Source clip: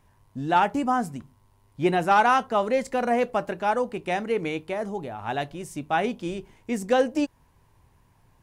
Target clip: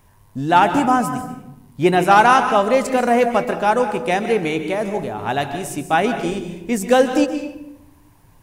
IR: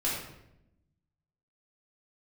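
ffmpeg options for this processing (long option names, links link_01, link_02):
-filter_complex "[0:a]highshelf=frequency=8800:gain=9.5,asplit=2[link_01][link_02];[1:a]atrim=start_sample=2205,adelay=128[link_03];[link_02][link_03]afir=irnorm=-1:irlink=0,volume=-15.5dB[link_04];[link_01][link_04]amix=inputs=2:normalize=0,volume=7dB"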